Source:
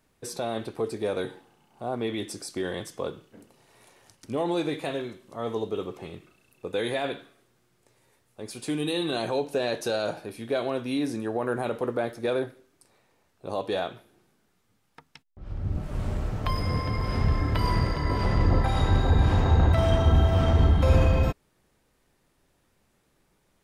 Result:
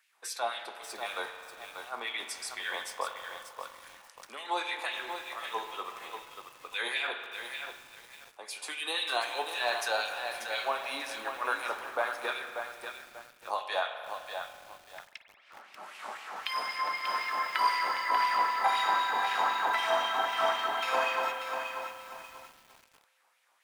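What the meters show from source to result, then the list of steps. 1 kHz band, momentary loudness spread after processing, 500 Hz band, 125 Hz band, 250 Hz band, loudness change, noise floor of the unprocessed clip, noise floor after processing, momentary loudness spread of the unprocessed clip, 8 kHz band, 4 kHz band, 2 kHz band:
+4.0 dB, 20 LU, −8.5 dB, below −40 dB, −22.5 dB, −5.0 dB, −69 dBFS, −62 dBFS, 15 LU, +0.5 dB, +2.5 dB, +5.0 dB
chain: Chebyshev high-pass filter 180 Hz, order 8
auto-filter high-pass sine 3.9 Hz 860–2,600 Hz
spring reverb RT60 2.6 s, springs 42 ms, chirp 35 ms, DRR 7 dB
feedback echo at a low word length 588 ms, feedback 35%, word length 8 bits, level −6.5 dB

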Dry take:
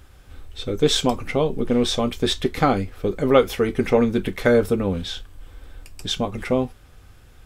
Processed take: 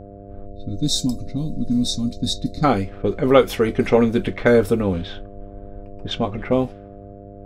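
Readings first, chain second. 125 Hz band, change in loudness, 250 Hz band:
+2.0 dB, +1.0 dB, +2.0 dB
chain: low-pass that shuts in the quiet parts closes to 580 Hz, open at −16 dBFS
gain on a spectral selection 0:00.47–0:02.64, 320–3,600 Hz −24 dB
hum with harmonics 100 Hz, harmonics 7, −42 dBFS −1 dB per octave
level +2 dB

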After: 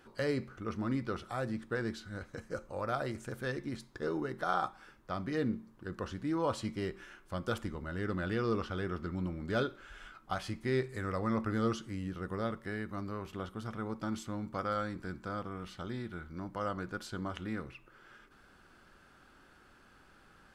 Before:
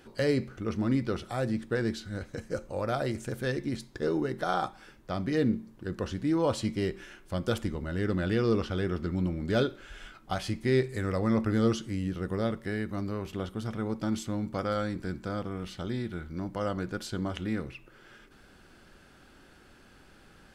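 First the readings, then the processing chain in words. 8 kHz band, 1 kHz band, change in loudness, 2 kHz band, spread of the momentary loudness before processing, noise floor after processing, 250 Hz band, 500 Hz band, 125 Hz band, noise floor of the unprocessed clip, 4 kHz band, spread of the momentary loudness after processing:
−7.0 dB, −1.5 dB, −6.0 dB, −3.0 dB, 10 LU, −62 dBFS, −7.0 dB, −6.0 dB, −7.0 dB, −57 dBFS, −6.5 dB, 9 LU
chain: parametric band 1,200 Hz +7.5 dB 1 octave
level −7 dB

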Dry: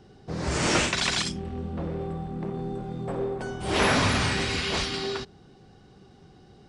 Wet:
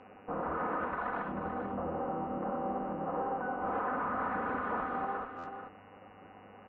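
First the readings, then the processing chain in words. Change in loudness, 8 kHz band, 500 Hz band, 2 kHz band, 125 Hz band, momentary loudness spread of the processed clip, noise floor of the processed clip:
−8.5 dB, below −40 dB, −6.5 dB, −11.0 dB, −16.5 dB, 16 LU, −55 dBFS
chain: lower of the sound and its delayed copy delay 4 ms
elliptic low-pass filter 1,300 Hz, stop band 80 dB
spectral tilt +4.5 dB per octave
in parallel at +1.5 dB: downward compressor, threshold −40 dBFS, peak gain reduction 14 dB
on the sum: brickwall limiter −26.5 dBFS, peak gain reduction 11 dB
hum with harmonics 100 Hz, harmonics 29, −62 dBFS −2 dB per octave
on a send: single-tap delay 439 ms −8 dB
on the sum: buffer that repeats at 0:05.38, samples 512, times 4
Ogg Vorbis 48 kbit/s 16,000 Hz

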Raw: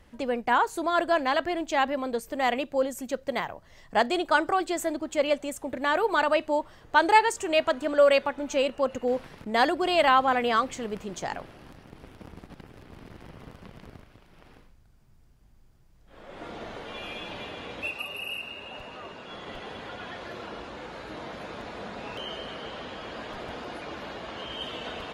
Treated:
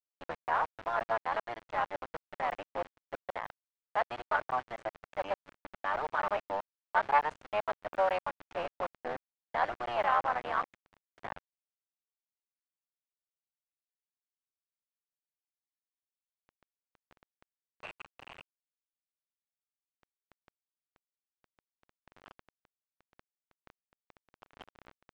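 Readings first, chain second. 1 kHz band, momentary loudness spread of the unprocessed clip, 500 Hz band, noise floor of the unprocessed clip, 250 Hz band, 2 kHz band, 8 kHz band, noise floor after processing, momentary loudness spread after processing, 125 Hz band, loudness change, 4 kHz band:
−6.5 dB, 18 LU, −11.5 dB, −56 dBFS, −20.5 dB, −9.5 dB, below −25 dB, below −85 dBFS, 17 LU, −10.0 dB, −7.0 dB, −17.5 dB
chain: sub-harmonics by changed cycles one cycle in 3, muted
high-pass filter 610 Hz 24 dB per octave
bit reduction 5 bits
low-pass filter 1,600 Hz 12 dB per octave
level −4 dB

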